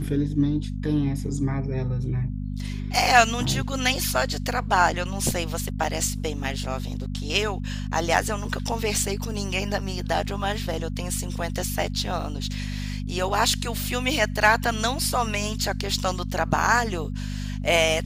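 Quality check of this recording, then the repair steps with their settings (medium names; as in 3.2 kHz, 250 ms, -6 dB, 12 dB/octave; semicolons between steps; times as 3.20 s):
hum 50 Hz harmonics 5 -30 dBFS
5.84 s: dropout 2.6 ms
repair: de-hum 50 Hz, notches 5; interpolate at 5.84 s, 2.6 ms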